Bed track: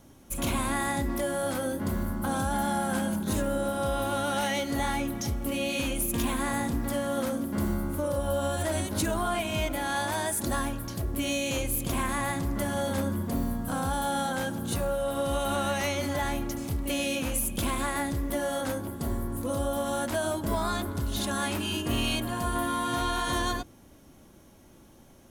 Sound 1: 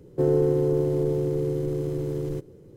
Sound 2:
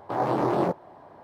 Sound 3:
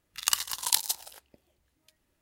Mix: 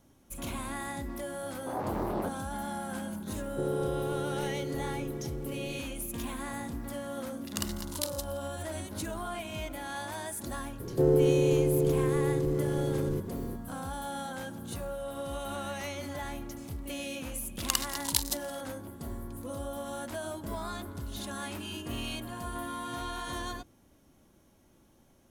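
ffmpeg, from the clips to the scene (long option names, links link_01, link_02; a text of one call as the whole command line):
ffmpeg -i bed.wav -i cue0.wav -i cue1.wav -i cue2.wav -filter_complex "[1:a]asplit=2[link_01][link_02];[3:a]asplit=2[link_03][link_04];[0:a]volume=-8.5dB[link_05];[link_02]acompressor=mode=upward:threshold=-26dB:ratio=2.5:attack=3.2:release=140:knee=2.83:detection=peak[link_06];[2:a]atrim=end=1.23,asetpts=PTS-STARTPTS,volume=-9.5dB,afade=type=in:duration=0.004:curve=hsin,afade=type=out:start_time=1.226:duration=0.004:curve=hsin,adelay=1570[link_07];[link_01]atrim=end=2.76,asetpts=PTS-STARTPTS,volume=-11dB,afade=type=in:duration=0.004:curve=hsin,afade=type=out:start_time=2.756:duration=0.004:curve=hsin,adelay=3390[link_08];[link_03]atrim=end=2.21,asetpts=PTS-STARTPTS,volume=-10dB,afade=type=in:duration=0.004:curve=hsin,afade=type=out:start_time=2.206:duration=0.004:curve=hsin,adelay=7290[link_09];[link_06]atrim=end=2.76,asetpts=PTS-STARTPTS,volume=-2dB,afade=type=in:duration=0.004:curve=hsin,afade=type=out:start_time=2.756:duration=0.004:curve=hsin,adelay=10800[link_10];[link_04]atrim=end=2.21,asetpts=PTS-STARTPTS,volume=-3.5dB,afade=type=in:duration=0.004:curve=hsin,afade=type=out:start_time=2.206:duration=0.004:curve=hsin,adelay=17420[link_11];[link_05][link_07][link_08][link_09][link_10][link_11]amix=inputs=6:normalize=0" out.wav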